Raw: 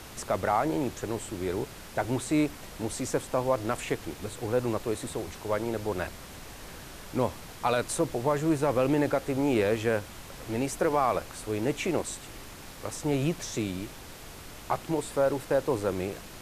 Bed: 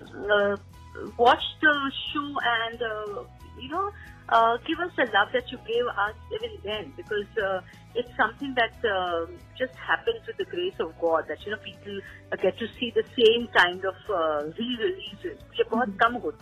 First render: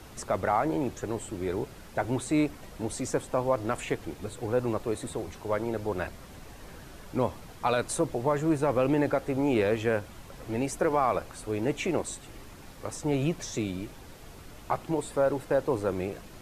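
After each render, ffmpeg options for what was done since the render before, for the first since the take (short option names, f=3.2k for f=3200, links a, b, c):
-af "afftdn=nr=7:nf=-45"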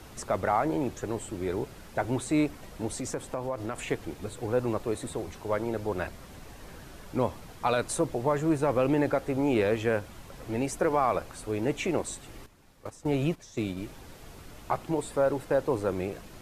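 -filter_complex "[0:a]asettb=1/sr,asplit=3[a][b][c];[a]atrim=end=2.884[d];[b]atrim=start=2.88:end=3.86,asetpts=PTS-STARTPTS,afade=t=in:d=0.004:c=qsin,afade=t=out:st=0.976:d=0.004:c=qsin,acompressor=threshold=-29dB:ratio=3:attack=3.2:release=140:knee=1:detection=peak[e];[c]atrim=start=3.856[f];[d][e]acrossfade=d=0.004:c1=hsin:c2=qsin[g];[g][f]acrossfade=d=0.004:c1=qsin:c2=hsin,asettb=1/sr,asplit=3[h][i][j];[h]atrim=end=12.464[k];[i]atrim=start=12.46:end=13.77,asetpts=PTS-STARTPTS,afade=t=in:d=0.004:c=qsin,afade=t=out:st=1.306:d=0.004:c=qsin,agate=range=-12dB:threshold=-35dB:ratio=16:release=100:detection=peak[l];[j]atrim=start=13.766[m];[k][l]acrossfade=d=0.004:c1=hsin:c2=qsin[n];[n][m]acrossfade=d=0.004:c1=qsin:c2=hsin"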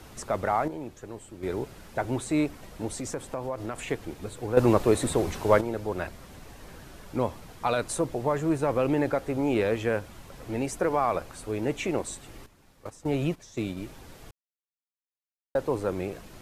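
-filter_complex "[0:a]asplit=7[a][b][c][d][e][f][g];[a]atrim=end=0.682[h];[b]atrim=start=0.678:end=1.432,asetpts=PTS-STARTPTS,volume=-8dB[i];[c]atrim=start=1.428:end=4.572[j];[d]atrim=start=4.568:end=5.612,asetpts=PTS-STARTPTS,volume=9dB[k];[e]atrim=start=5.608:end=14.31,asetpts=PTS-STARTPTS,afade=t=out:st=8.698:d=0.004:c=hsin[l];[f]atrim=start=14.31:end=15.55,asetpts=PTS-STARTPTS,volume=0[m];[g]atrim=start=15.55,asetpts=PTS-STARTPTS,afade=t=in:d=0.004:c=hsin[n];[h][i]acrossfade=d=0.004:c1=hsin:c2=hsin[o];[o][j]acrossfade=d=0.004:c1=hsin:c2=hsin[p];[p][k]acrossfade=d=0.004:c1=hsin:c2=hsin[q];[l][m][n]concat=n=3:v=0:a=1[r];[q][r]acrossfade=d=0.004:c1=hsin:c2=hsin"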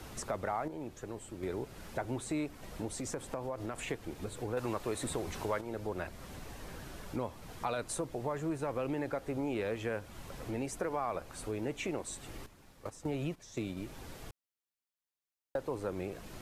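-filter_complex "[0:a]acrossover=split=830[a][b];[a]alimiter=limit=-18.5dB:level=0:latency=1:release=258[c];[c][b]amix=inputs=2:normalize=0,acompressor=threshold=-39dB:ratio=2"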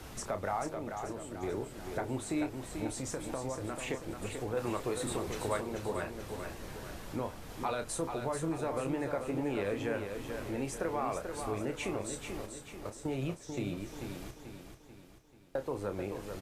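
-filter_complex "[0:a]asplit=2[a][b];[b]adelay=30,volume=-8.5dB[c];[a][c]amix=inputs=2:normalize=0,aecho=1:1:438|876|1314|1752|2190|2628:0.473|0.222|0.105|0.0491|0.0231|0.0109"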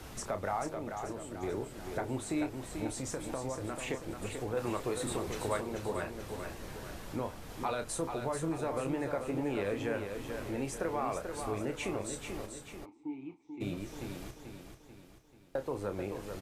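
-filter_complex "[0:a]asplit=3[a][b][c];[a]afade=t=out:st=12.84:d=0.02[d];[b]asplit=3[e][f][g];[e]bandpass=f=300:t=q:w=8,volume=0dB[h];[f]bandpass=f=870:t=q:w=8,volume=-6dB[i];[g]bandpass=f=2.24k:t=q:w=8,volume=-9dB[j];[h][i][j]amix=inputs=3:normalize=0,afade=t=in:st=12.84:d=0.02,afade=t=out:st=13.6:d=0.02[k];[c]afade=t=in:st=13.6:d=0.02[l];[d][k][l]amix=inputs=3:normalize=0"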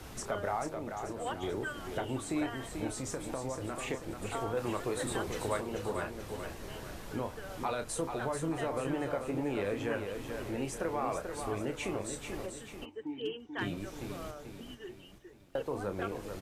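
-filter_complex "[1:a]volume=-20dB[a];[0:a][a]amix=inputs=2:normalize=0"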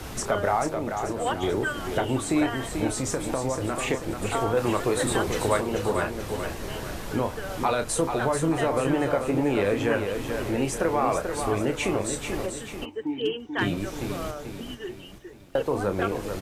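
-af "volume=10dB"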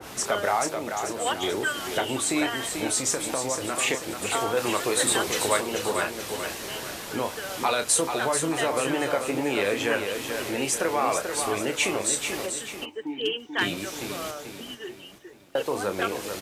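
-af "highpass=f=340:p=1,adynamicequalizer=threshold=0.00708:dfrequency=2000:dqfactor=0.7:tfrequency=2000:tqfactor=0.7:attack=5:release=100:ratio=0.375:range=4:mode=boostabove:tftype=highshelf"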